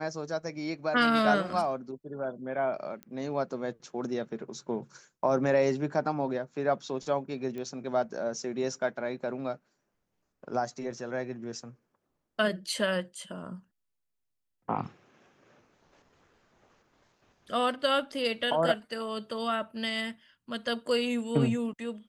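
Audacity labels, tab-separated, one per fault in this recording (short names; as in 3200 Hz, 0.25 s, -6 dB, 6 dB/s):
3.030000	3.030000	pop -27 dBFS
7.580000	7.580000	pop -27 dBFS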